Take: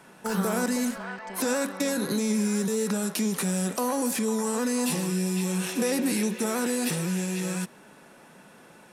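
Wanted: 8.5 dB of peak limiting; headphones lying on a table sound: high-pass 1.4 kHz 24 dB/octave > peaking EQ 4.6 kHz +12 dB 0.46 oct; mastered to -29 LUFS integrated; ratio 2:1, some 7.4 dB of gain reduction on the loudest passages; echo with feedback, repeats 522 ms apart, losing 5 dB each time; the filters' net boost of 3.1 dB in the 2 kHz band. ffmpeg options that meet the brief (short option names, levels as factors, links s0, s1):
-af "equalizer=f=2000:t=o:g=4.5,acompressor=threshold=0.0158:ratio=2,alimiter=level_in=1.41:limit=0.0631:level=0:latency=1,volume=0.708,highpass=f=1400:w=0.5412,highpass=f=1400:w=1.3066,equalizer=f=4600:t=o:w=0.46:g=12,aecho=1:1:522|1044|1566|2088|2610|3132|3654:0.562|0.315|0.176|0.0988|0.0553|0.031|0.0173,volume=2.66"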